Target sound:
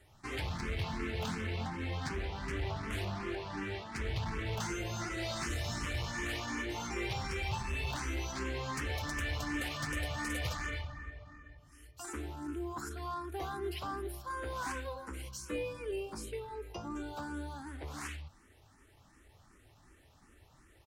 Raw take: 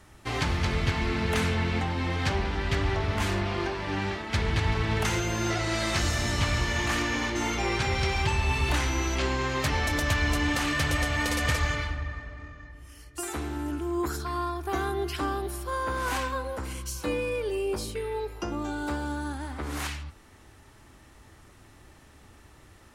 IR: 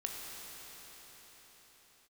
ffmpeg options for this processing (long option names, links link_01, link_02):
-filter_complex "[0:a]volume=23dB,asoftclip=hard,volume=-23dB,atempo=1.1,asplit=2[link_01][link_02];[link_02]afreqshift=2.7[link_03];[link_01][link_03]amix=inputs=2:normalize=1,volume=-6dB"